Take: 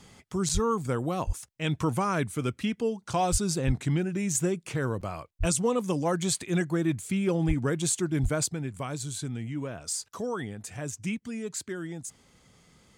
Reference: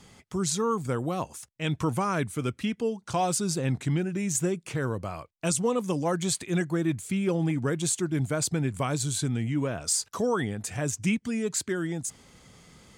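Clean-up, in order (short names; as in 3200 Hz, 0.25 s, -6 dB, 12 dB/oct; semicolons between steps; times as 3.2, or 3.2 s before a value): de-plosive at 0.53/1.26/3.31/3.66/5.39/7.47/8.22; interpolate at 0.49/5.01, 6.1 ms; gain 0 dB, from 8.46 s +6 dB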